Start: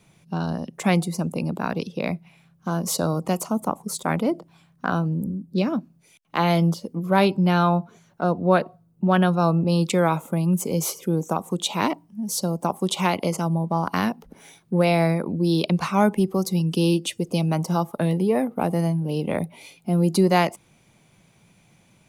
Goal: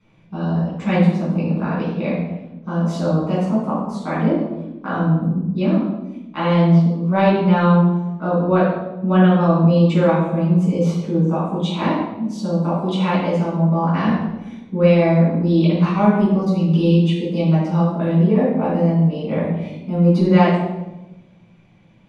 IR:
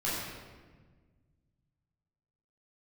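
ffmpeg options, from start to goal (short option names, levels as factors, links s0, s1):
-filter_complex "[0:a]lowpass=3200[s0];[1:a]atrim=start_sample=2205,asetrate=74970,aresample=44100[s1];[s0][s1]afir=irnorm=-1:irlink=0,volume=0.841"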